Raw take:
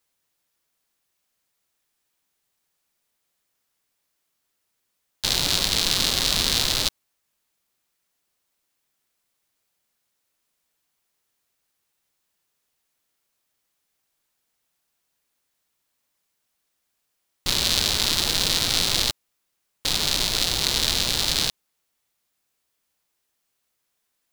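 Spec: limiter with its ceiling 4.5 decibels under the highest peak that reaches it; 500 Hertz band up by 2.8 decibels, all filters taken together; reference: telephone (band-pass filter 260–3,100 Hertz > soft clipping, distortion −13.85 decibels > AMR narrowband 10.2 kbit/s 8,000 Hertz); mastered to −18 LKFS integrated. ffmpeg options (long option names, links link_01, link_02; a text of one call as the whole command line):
ffmpeg -i in.wav -af "equalizer=frequency=500:width_type=o:gain=4,alimiter=limit=-6.5dB:level=0:latency=1,highpass=260,lowpass=3100,asoftclip=threshold=-18.5dB,volume=17dB" -ar 8000 -c:a libopencore_amrnb -b:a 10200 out.amr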